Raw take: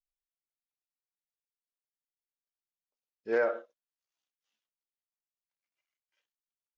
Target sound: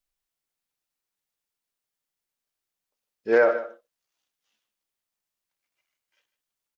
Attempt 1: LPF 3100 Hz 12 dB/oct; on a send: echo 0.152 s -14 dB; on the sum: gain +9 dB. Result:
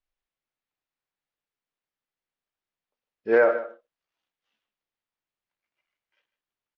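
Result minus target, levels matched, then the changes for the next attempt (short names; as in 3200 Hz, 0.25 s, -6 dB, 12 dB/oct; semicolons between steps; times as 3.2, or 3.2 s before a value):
4000 Hz band -4.5 dB
remove: LPF 3100 Hz 12 dB/oct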